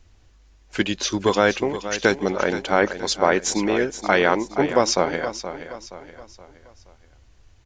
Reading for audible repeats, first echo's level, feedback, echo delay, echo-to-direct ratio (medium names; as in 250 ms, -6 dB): 4, -11.5 dB, 42%, 473 ms, -10.5 dB